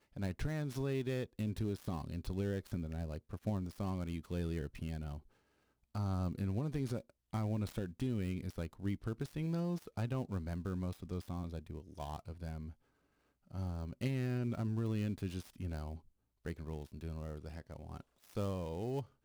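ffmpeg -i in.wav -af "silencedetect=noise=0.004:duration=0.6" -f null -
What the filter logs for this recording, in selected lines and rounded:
silence_start: 5.19
silence_end: 5.95 | silence_duration: 0.76
silence_start: 12.72
silence_end: 13.51 | silence_duration: 0.79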